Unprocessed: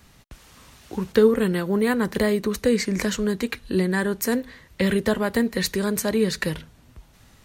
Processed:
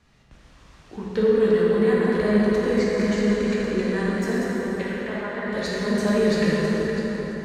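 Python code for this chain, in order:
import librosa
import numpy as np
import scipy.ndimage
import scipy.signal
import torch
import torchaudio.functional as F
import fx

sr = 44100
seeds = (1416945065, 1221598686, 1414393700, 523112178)

y = fx.reverse_delay_fb(x, sr, ms=333, feedback_pct=42, wet_db=-5.5)
y = fx.bandpass_edges(y, sr, low_hz=760.0, high_hz=2500.0, at=(4.81, 5.45), fade=0.02)
y = fx.leveller(y, sr, passes=1, at=(6.01, 6.54))
y = fx.air_absorb(y, sr, metres=79.0)
y = fx.rev_plate(y, sr, seeds[0], rt60_s=5.0, hf_ratio=0.5, predelay_ms=0, drr_db=-6.5)
y = y * librosa.db_to_amplitude(-8.0)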